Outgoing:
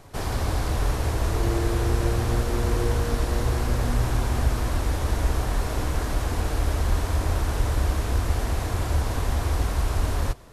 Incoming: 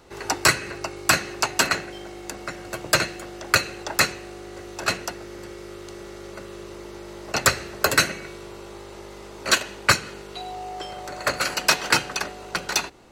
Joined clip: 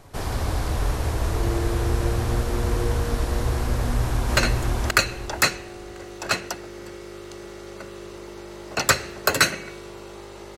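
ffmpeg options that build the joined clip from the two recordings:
ffmpeg -i cue0.wav -i cue1.wav -filter_complex "[0:a]apad=whole_dur=10.57,atrim=end=10.57,atrim=end=4.372[link_01];[1:a]atrim=start=2.938:end=9.14[link_02];[link_01][link_02]acrossfade=duration=0.004:curve1=hsin:curve2=hsin,asplit=2[link_03][link_04];[link_04]afade=type=in:start_time=3.75:duration=0.01,afade=type=out:start_time=4.37:duration=0.01,aecho=0:1:530|1060|1590|2120:0.944061|0.236015|0.0590038|0.014751[link_05];[link_03][link_05]amix=inputs=2:normalize=0" out.wav

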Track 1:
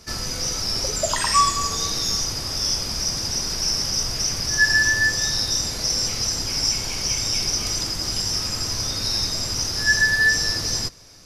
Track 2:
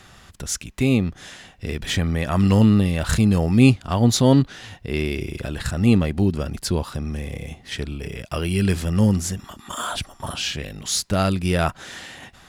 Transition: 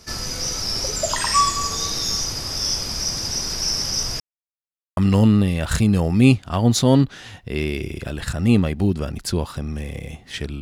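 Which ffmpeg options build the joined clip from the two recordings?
ffmpeg -i cue0.wav -i cue1.wav -filter_complex "[0:a]apad=whole_dur=10.61,atrim=end=10.61,asplit=2[link_01][link_02];[link_01]atrim=end=4.2,asetpts=PTS-STARTPTS,afade=type=out:start_time=4.196:duration=0.004:curve=hsin[link_03];[link_02]atrim=start=4.2:end=4.97,asetpts=PTS-STARTPTS,volume=0[link_04];[1:a]atrim=start=2.35:end=7.99,asetpts=PTS-STARTPTS,afade=type=in:duration=0.004:curve=hsin[link_05];[link_03][link_04][link_05]concat=n=3:v=0:a=1" out.wav

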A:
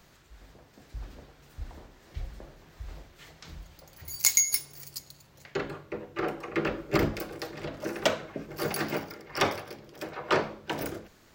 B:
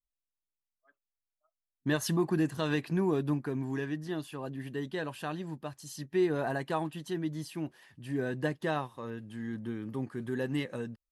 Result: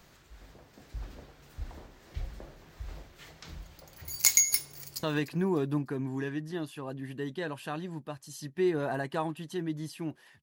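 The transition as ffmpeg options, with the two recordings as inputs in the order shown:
ffmpeg -i cue0.wav -i cue1.wav -filter_complex "[0:a]apad=whole_dur=10.42,atrim=end=10.42,atrim=end=5.032[link_01];[1:a]atrim=start=2.588:end=7.98[link_02];[link_01][link_02]acrossfade=duration=0.004:curve1=hsin:curve2=hsin,asplit=2[link_03][link_04];[link_04]afade=type=in:start_time=4.68:duration=0.01,afade=type=out:start_time=5.03:duration=0.01,aecho=0:1:300|600|900:0.188365|0.0565095|0.0169528[link_05];[link_03][link_05]amix=inputs=2:normalize=0" out.wav

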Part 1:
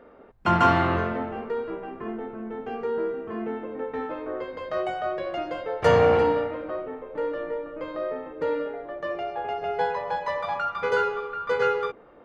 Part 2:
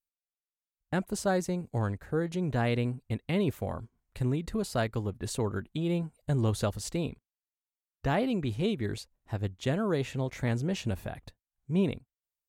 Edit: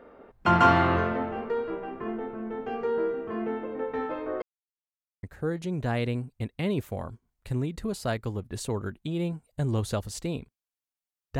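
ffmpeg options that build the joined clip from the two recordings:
ffmpeg -i cue0.wav -i cue1.wav -filter_complex "[0:a]apad=whole_dur=11.39,atrim=end=11.39,asplit=2[link_01][link_02];[link_01]atrim=end=4.42,asetpts=PTS-STARTPTS,afade=type=out:start_time=4.416:duration=0.004:curve=hsin[link_03];[link_02]atrim=start=4.42:end=5.23,asetpts=PTS-STARTPTS,volume=0[link_04];[1:a]atrim=start=1.93:end=8.09,asetpts=PTS-STARTPTS,afade=type=in:duration=0.004:curve=hsin[link_05];[link_03][link_04][link_05]concat=n=3:v=0:a=1" out.wav

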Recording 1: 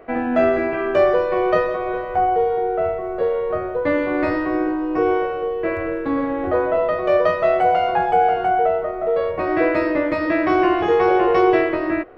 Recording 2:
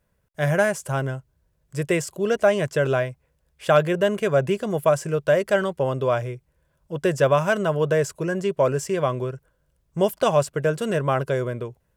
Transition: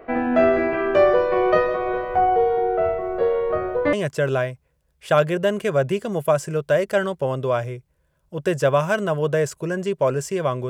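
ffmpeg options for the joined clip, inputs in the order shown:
ffmpeg -i cue0.wav -i cue1.wav -filter_complex "[0:a]apad=whole_dur=10.69,atrim=end=10.69,atrim=end=3.932[link_01];[1:a]atrim=start=2.508:end=9.27[link_02];[link_01][link_02]acrossfade=duration=0.004:curve1=hsin:curve2=hsin" out.wav

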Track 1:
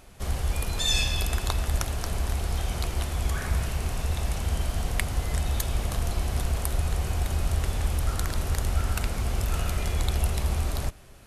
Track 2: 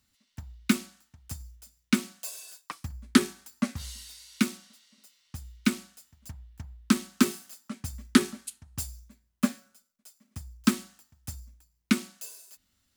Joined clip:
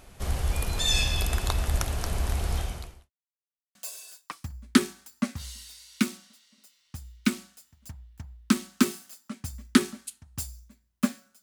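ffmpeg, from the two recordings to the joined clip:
ffmpeg -i cue0.wav -i cue1.wav -filter_complex "[0:a]apad=whole_dur=11.42,atrim=end=11.42,asplit=2[link_01][link_02];[link_01]atrim=end=3.11,asetpts=PTS-STARTPTS,afade=type=out:start_time=2.57:duration=0.54:curve=qua[link_03];[link_02]atrim=start=3.11:end=3.75,asetpts=PTS-STARTPTS,volume=0[link_04];[1:a]atrim=start=2.15:end=9.82,asetpts=PTS-STARTPTS,afade=type=in:duration=0.004:curve=hsin[link_05];[link_03][link_04][link_05]concat=n=3:v=0:a=1" out.wav

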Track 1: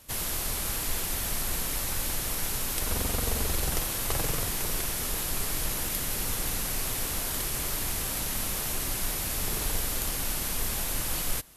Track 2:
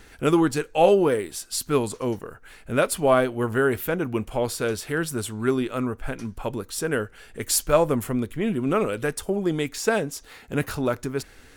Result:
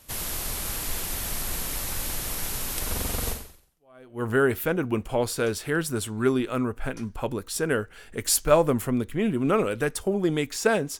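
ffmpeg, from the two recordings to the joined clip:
ffmpeg -i cue0.wav -i cue1.wav -filter_complex "[0:a]apad=whole_dur=10.99,atrim=end=10.99,atrim=end=4.26,asetpts=PTS-STARTPTS[link_01];[1:a]atrim=start=2.52:end=10.21,asetpts=PTS-STARTPTS[link_02];[link_01][link_02]acrossfade=duration=0.96:curve1=exp:curve2=exp" out.wav

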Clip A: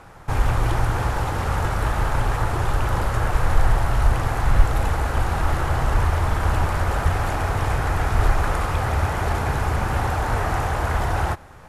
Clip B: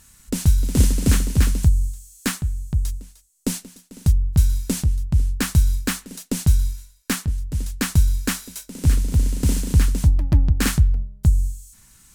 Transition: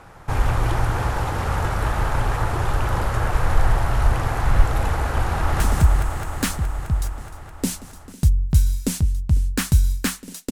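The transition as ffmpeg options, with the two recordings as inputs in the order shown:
ffmpeg -i cue0.wav -i cue1.wav -filter_complex "[0:a]apad=whole_dur=10.51,atrim=end=10.51,atrim=end=5.602[link_01];[1:a]atrim=start=1.428:end=6.34[link_02];[link_01][link_02]acrossfade=duration=0.004:curve1=hsin:curve2=hsin,asplit=2[link_03][link_04];[link_04]afade=type=in:start_time=5.35:duration=0.01,afade=type=out:start_time=5.6:duration=0.01,aecho=0:1:210|420|630|840|1050|1260|1470|1680|1890|2100|2310|2520:0.794328|0.635463|0.50837|0.406696|0.325357|0.260285|0.208228|0.166583|0.133266|0.106613|0.0852903|0.0682323[link_05];[link_03][link_05]amix=inputs=2:normalize=0" out.wav

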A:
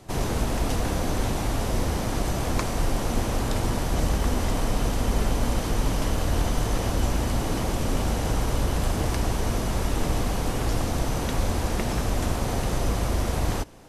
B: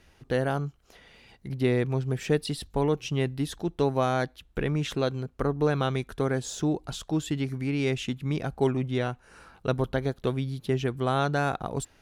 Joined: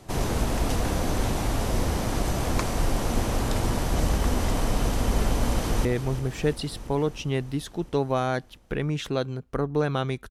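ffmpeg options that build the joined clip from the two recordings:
ffmpeg -i cue0.wav -i cue1.wav -filter_complex "[0:a]apad=whole_dur=10.3,atrim=end=10.3,atrim=end=5.852[link_01];[1:a]atrim=start=1.708:end=6.16[link_02];[link_01][link_02]acrossfade=duration=0.004:curve1=hsin:curve2=hsin,asplit=2[link_03][link_04];[link_04]afade=type=in:start_time=5.49:duration=0.01,afade=type=out:start_time=5.85:duration=0.01,aecho=0:1:340|680|1020|1360|1700|2040|2380|2720|3060|3400:0.316228|0.221359|0.154952|0.108466|0.0759263|0.0531484|0.0372039|0.0260427|0.0182299|0.0127609[link_05];[link_03][link_05]amix=inputs=2:normalize=0" out.wav

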